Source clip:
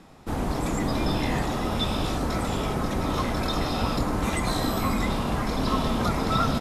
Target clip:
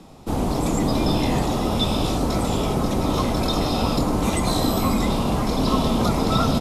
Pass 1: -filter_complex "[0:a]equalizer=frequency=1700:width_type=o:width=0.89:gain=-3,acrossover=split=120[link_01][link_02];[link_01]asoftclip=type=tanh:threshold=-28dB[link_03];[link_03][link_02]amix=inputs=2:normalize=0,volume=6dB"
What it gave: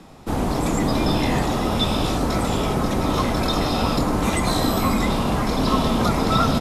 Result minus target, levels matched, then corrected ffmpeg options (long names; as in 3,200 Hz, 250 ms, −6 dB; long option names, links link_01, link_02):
2,000 Hz band +4.0 dB
-filter_complex "[0:a]equalizer=frequency=1700:width_type=o:width=0.89:gain=-10,acrossover=split=120[link_01][link_02];[link_01]asoftclip=type=tanh:threshold=-28dB[link_03];[link_03][link_02]amix=inputs=2:normalize=0,volume=6dB"